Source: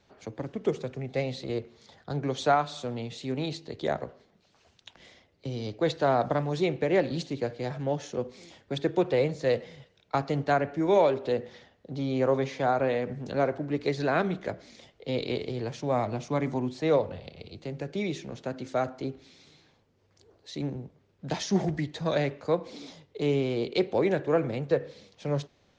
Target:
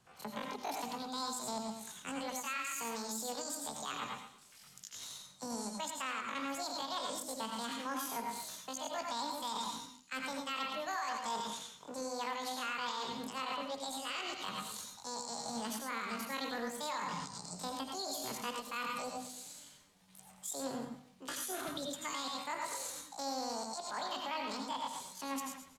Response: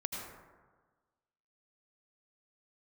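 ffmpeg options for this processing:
-filter_complex "[0:a]acrossover=split=200|1100[link_01][link_02][link_03];[link_01]lowshelf=frequency=120:gain=7[link_04];[link_03]dynaudnorm=framelen=200:gausssize=3:maxgain=12dB[link_05];[link_04][link_02][link_05]amix=inputs=3:normalize=0,aecho=1:1:120|240|360:0.224|0.0627|0.0176,asetrate=83250,aresample=44100,atempo=0.529732,areverse,acompressor=threshold=-31dB:ratio=8,areverse,equalizer=frequency=330:width=5.8:gain=-10.5,bandreject=frequency=50:width_type=h:width=6,bandreject=frequency=100:width_type=h:width=6,bandreject=frequency=150:width_type=h:width=6,bandreject=frequency=200:width_type=h:width=6,bandreject=frequency=250:width_type=h:width=6[link_06];[1:a]atrim=start_sample=2205,afade=type=out:start_time=0.16:duration=0.01,atrim=end_sample=7497[link_07];[link_06][link_07]afir=irnorm=-1:irlink=0,alimiter=level_in=2.5dB:limit=-24dB:level=0:latency=1:release=129,volume=-2.5dB,volume=-2.5dB"

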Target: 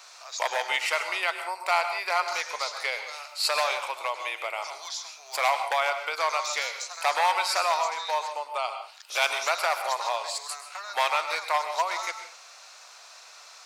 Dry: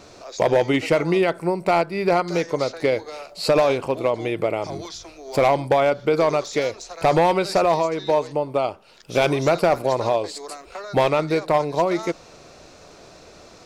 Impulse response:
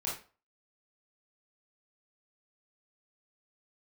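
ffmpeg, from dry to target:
-filter_complex "[0:a]highpass=frequency=890:width=0.5412,highpass=frequency=890:width=1.3066,highshelf=frequency=5600:gain=5,asplit=2[link_01][link_02];[1:a]atrim=start_sample=2205,adelay=104[link_03];[link_02][link_03]afir=irnorm=-1:irlink=0,volume=-11.5dB[link_04];[link_01][link_04]amix=inputs=2:normalize=0"

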